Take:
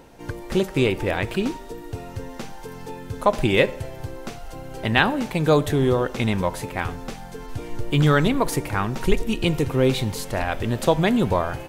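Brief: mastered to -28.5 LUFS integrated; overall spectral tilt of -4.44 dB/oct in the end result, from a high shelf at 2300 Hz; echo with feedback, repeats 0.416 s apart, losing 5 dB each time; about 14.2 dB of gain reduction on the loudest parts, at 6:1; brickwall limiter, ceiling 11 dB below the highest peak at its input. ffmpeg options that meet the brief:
-af "highshelf=f=2.3k:g=8.5,acompressor=threshold=-26dB:ratio=6,alimiter=limit=-23dB:level=0:latency=1,aecho=1:1:416|832|1248|1664|2080|2496|2912:0.562|0.315|0.176|0.0988|0.0553|0.031|0.0173,volume=4.5dB"

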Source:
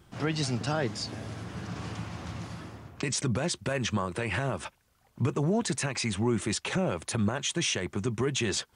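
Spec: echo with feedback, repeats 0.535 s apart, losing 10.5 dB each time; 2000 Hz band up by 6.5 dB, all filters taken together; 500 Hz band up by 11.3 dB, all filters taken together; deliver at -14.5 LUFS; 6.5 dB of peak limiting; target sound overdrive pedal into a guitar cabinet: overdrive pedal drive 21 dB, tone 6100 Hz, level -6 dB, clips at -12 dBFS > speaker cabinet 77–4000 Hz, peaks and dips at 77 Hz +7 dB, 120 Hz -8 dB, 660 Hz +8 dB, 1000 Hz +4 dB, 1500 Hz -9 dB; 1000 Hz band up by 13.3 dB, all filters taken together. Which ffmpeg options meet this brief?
-filter_complex "[0:a]equalizer=f=500:t=o:g=8,equalizer=f=1k:t=o:g=8.5,equalizer=f=2k:t=o:g=8.5,alimiter=limit=-14.5dB:level=0:latency=1,aecho=1:1:535|1070|1605:0.299|0.0896|0.0269,asplit=2[a][b];[b]highpass=f=720:p=1,volume=21dB,asoftclip=type=tanh:threshold=-12dB[c];[a][c]amix=inputs=2:normalize=0,lowpass=f=6.1k:p=1,volume=-6dB,highpass=77,equalizer=f=77:t=q:w=4:g=7,equalizer=f=120:t=q:w=4:g=-8,equalizer=f=660:t=q:w=4:g=8,equalizer=f=1k:t=q:w=4:g=4,equalizer=f=1.5k:t=q:w=4:g=-9,lowpass=f=4k:w=0.5412,lowpass=f=4k:w=1.3066,volume=5.5dB"

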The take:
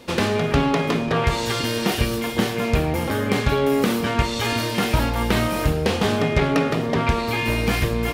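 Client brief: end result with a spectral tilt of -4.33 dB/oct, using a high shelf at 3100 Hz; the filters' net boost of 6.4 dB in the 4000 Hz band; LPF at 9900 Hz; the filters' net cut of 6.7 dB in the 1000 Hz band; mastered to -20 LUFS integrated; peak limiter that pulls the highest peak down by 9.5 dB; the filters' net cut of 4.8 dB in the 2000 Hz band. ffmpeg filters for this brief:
-af "lowpass=9.9k,equalizer=f=1k:t=o:g=-7.5,equalizer=f=2k:t=o:g=-9,highshelf=f=3.1k:g=5.5,equalizer=f=4k:t=o:g=7.5,volume=3dB,alimiter=limit=-10.5dB:level=0:latency=1"

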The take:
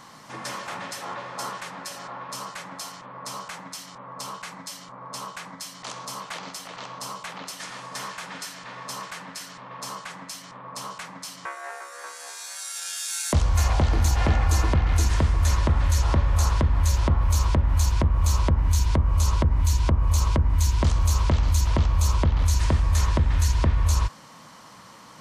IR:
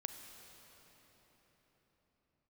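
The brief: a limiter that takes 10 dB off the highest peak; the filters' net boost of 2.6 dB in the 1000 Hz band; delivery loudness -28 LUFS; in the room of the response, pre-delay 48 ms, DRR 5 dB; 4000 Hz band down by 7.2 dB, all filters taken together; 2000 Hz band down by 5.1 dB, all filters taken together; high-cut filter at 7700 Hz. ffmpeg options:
-filter_complex "[0:a]lowpass=7.7k,equalizer=f=1k:t=o:g=5,equalizer=f=2k:t=o:g=-7,equalizer=f=4k:t=o:g=-7.5,alimiter=limit=-19.5dB:level=0:latency=1,asplit=2[a][b];[1:a]atrim=start_sample=2205,adelay=48[c];[b][c]afir=irnorm=-1:irlink=0,volume=-3dB[d];[a][d]amix=inputs=2:normalize=0,volume=1.5dB"

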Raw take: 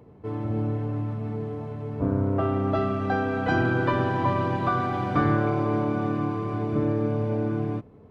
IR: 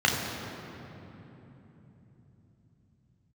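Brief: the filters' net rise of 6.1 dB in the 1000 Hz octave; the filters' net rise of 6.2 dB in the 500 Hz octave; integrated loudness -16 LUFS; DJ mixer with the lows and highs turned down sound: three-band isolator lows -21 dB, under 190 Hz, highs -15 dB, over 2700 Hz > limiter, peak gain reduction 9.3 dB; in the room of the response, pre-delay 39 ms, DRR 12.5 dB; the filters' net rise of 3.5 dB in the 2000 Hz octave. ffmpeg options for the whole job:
-filter_complex "[0:a]equalizer=f=500:t=o:g=7,equalizer=f=1k:t=o:g=5,equalizer=f=2k:t=o:g=3,asplit=2[a][b];[1:a]atrim=start_sample=2205,adelay=39[c];[b][c]afir=irnorm=-1:irlink=0,volume=-28.5dB[d];[a][d]amix=inputs=2:normalize=0,acrossover=split=190 2700:gain=0.0891 1 0.178[e][f][g];[e][f][g]amix=inputs=3:normalize=0,volume=10.5dB,alimiter=limit=-6.5dB:level=0:latency=1"

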